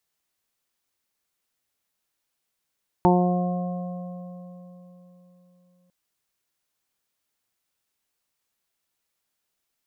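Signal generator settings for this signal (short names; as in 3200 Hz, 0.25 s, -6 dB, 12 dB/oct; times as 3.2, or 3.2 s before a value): additive tone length 2.85 s, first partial 179 Hz, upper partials 0/-8/-3.5/1/-19 dB, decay 3.85 s, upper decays 1.14/3.94/2.59/0.46/3.60 s, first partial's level -17.5 dB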